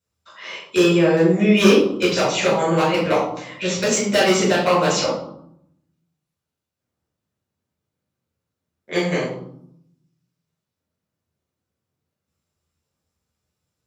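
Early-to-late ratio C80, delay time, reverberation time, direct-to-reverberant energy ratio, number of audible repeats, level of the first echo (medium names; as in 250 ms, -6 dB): 6.5 dB, no echo, 0.70 s, -8.0 dB, no echo, no echo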